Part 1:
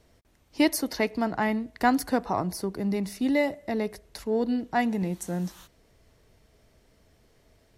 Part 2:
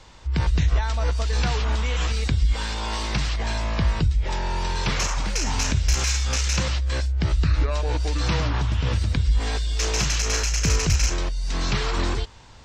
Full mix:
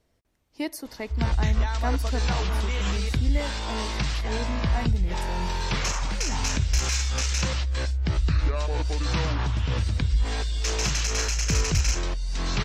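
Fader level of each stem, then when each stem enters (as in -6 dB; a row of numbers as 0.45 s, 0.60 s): -8.5 dB, -2.5 dB; 0.00 s, 0.85 s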